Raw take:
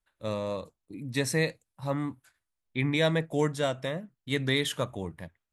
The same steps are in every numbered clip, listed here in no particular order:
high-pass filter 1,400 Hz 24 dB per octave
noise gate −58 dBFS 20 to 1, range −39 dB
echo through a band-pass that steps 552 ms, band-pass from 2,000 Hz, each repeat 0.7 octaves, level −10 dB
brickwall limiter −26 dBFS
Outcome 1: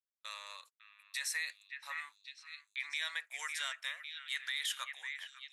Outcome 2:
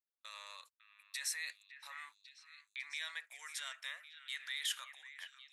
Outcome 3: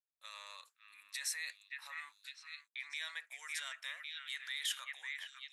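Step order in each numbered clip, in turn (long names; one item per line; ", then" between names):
high-pass filter, then noise gate, then echo through a band-pass that steps, then brickwall limiter
brickwall limiter, then high-pass filter, then noise gate, then echo through a band-pass that steps
echo through a band-pass that steps, then brickwall limiter, then noise gate, then high-pass filter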